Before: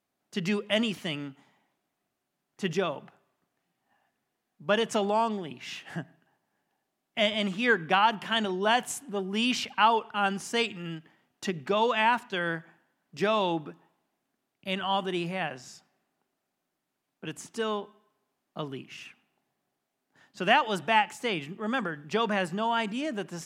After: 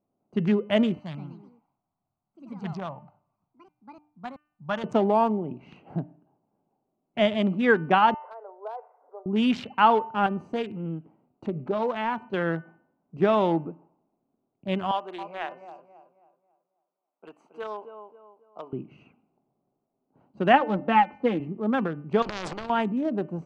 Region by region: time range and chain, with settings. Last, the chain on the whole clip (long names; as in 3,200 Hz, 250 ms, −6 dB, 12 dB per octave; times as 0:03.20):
0:01.00–0:04.84: drawn EQ curve 120 Hz 0 dB, 420 Hz −21 dB, 780 Hz −2 dB, 1,500 Hz −2 dB, 2,900 Hz −5 dB, 4,400 Hz +8 dB, 10,000 Hz −3 dB + delay with pitch and tempo change per echo 134 ms, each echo +3 semitones, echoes 3, each echo −6 dB
0:08.14–0:09.26: downward compressor 2 to 1, threshold −41 dBFS + Chebyshev band-pass filter 440–2,000 Hz, order 5
0:10.26–0:12.34: downward compressor 1.5 to 1, threshold −35 dBFS + highs frequency-modulated by the lows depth 0.21 ms
0:14.91–0:18.73: high-pass filter 800 Hz + feedback echo with a low-pass in the loop 272 ms, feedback 38%, low-pass 2,700 Hz, level −8 dB
0:20.53–0:21.40: high-frequency loss of the air 240 metres + comb filter 3.8 ms, depth 71%
0:22.22–0:22.70: low-pass filter 5,200 Hz 24 dB per octave + transient designer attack −11 dB, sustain +10 dB + every bin compressed towards the loudest bin 10 to 1
whole clip: adaptive Wiener filter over 25 samples; low-pass filter 1,000 Hz 6 dB per octave; hum removal 299 Hz, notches 10; level +7 dB